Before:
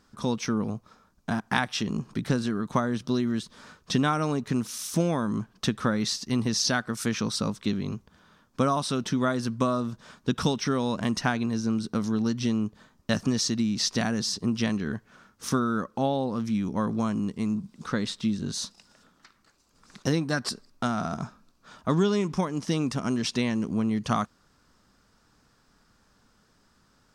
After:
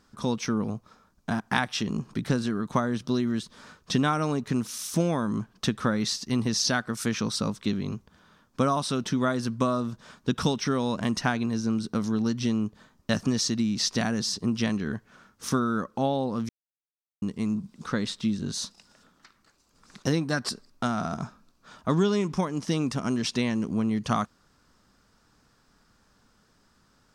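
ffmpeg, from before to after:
-filter_complex "[0:a]asplit=3[s0][s1][s2];[s0]atrim=end=16.49,asetpts=PTS-STARTPTS,afade=t=out:st=16.486:d=0.004:c=hsin[s3];[s1]atrim=start=16.49:end=17.22,asetpts=PTS-STARTPTS,volume=0[s4];[s2]atrim=start=17.22,asetpts=PTS-STARTPTS,afade=t=in:d=0.004:c=hsin[s5];[s3][s4][s5]concat=n=3:v=0:a=1"

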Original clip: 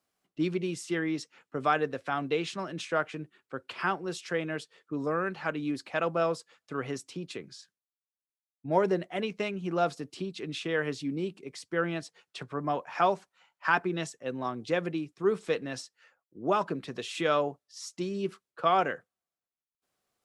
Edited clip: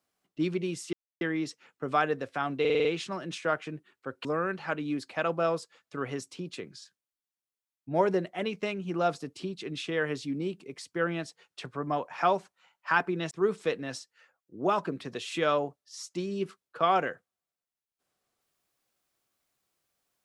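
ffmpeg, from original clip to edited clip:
-filter_complex "[0:a]asplit=9[s0][s1][s2][s3][s4][s5][s6][s7][s8];[s0]atrim=end=0.93,asetpts=PTS-STARTPTS,afade=t=out:st=0.926:d=0.004:c=hsin,apad=pad_dur=0.28[s9];[s1]atrim=start=0.93:end=2.372,asetpts=PTS-STARTPTS,afade=t=in:d=0.004:c=hsin[s10];[s2]atrim=start=2.318:end=2.372[s11];[s3]atrim=start=2.318:end=2.372[s12];[s4]atrim=start=2.318:end=2.372[s13];[s5]atrim=start=2.318:end=2.372[s14];[s6]atrim=start=2.318:end=3.722[s15];[s7]atrim=start=5.018:end=14.082[s16];[s8]atrim=start=15.138[s17];[s9][s10]concat=n=2:v=0:a=1[s18];[s18][s11]acrossfade=d=0.004:c1=hsin:c2=hsin[s19];[s19][s12]acrossfade=d=0.004:c1=hsin:c2=hsin[s20];[s20][s13]acrossfade=d=0.004:c1=hsin:c2=hsin[s21];[s21][s14]acrossfade=d=0.004:c1=hsin:c2=hsin[s22];[s22][s15]acrossfade=d=0.004:c1=hsin:c2=hsin[s23];[s23][s16]acrossfade=d=0.004:c1=hsin:c2=hsin[s24];[s24][s17]acrossfade=d=0.004:c1=hsin:c2=hsin"

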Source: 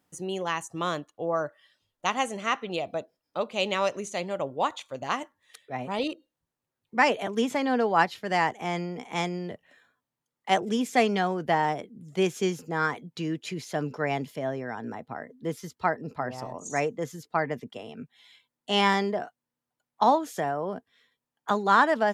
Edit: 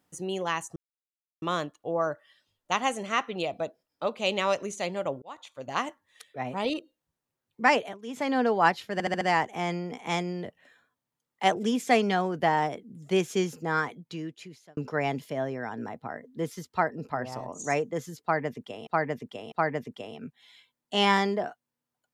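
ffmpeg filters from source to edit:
-filter_complex "[0:a]asplit=12[s0][s1][s2][s3][s4][s5][s6][s7][s8][s9][s10][s11];[s0]atrim=end=0.76,asetpts=PTS-STARTPTS,afade=t=out:st=0.756:d=0.004:c=hsin,apad=pad_dur=0.66[s12];[s1]atrim=start=0.76:end=4.56,asetpts=PTS-STARTPTS,afade=t=in:d=0.004:c=hsin,afade=t=out:st=3.796:d=0.004:c=hsin[s13];[s2]atrim=start=4.56:end=7.32,asetpts=PTS-STARTPTS,afade=t=in:d=0.57,afade=t=out:st=2.52:d=0.24:silence=0.16788[s14];[s3]atrim=start=7.32:end=7.4,asetpts=PTS-STARTPTS,volume=0.168[s15];[s4]atrim=start=7.4:end=8.342,asetpts=PTS-STARTPTS,afade=t=in:d=0.24:silence=0.16788[s16];[s5]atrim=start=8.268:end=8.342[s17];[s6]atrim=start=8.268:end=8.342[s18];[s7]atrim=start=8.268:end=8.342[s19];[s8]atrim=start=8.268:end=13.83,asetpts=PTS-STARTPTS,afade=t=out:st=4.502:d=1.06[s20];[s9]atrim=start=13.83:end=17.932,asetpts=PTS-STARTPTS,afade=t=in:d=0.004:c=hsin[s21];[s10]atrim=start=17.278:end=17.932[s22];[s11]atrim=start=17.278[s23];[s12][s13][s14][s15][s16]concat=n=5:v=0:a=1[s24];[s24][s17]acrossfade=d=0.004:c1=hsin:c2=hsin[s25];[s25][s18]acrossfade=d=0.004:c1=hsin:c2=hsin[s26];[s26][s19]acrossfade=d=0.004:c1=hsin:c2=hsin[s27];[s20][s21]concat=n=2:v=0:a=1[s28];[s27][s28]acrossfade=d=0.004:c1=hsin:c2=hsin[s29];[s29][s22]acrossfade=d=0.004:c1=hsin:c2=hsin[s30];[s30][s23]acrossfade=d=0.004:c1=hsin:c2=hsin"

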